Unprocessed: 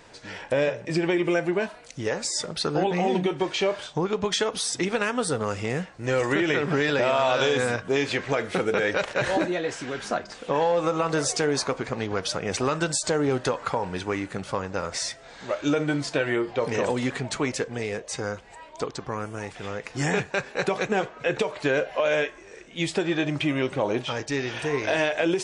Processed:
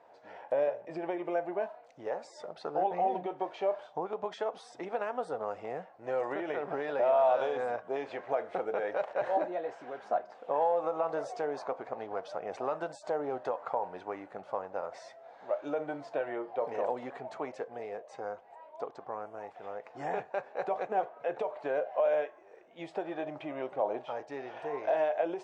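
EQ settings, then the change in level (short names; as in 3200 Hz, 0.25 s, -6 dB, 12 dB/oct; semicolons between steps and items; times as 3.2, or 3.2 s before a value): band-pass 710 Hz, Q 3; 0.0 dB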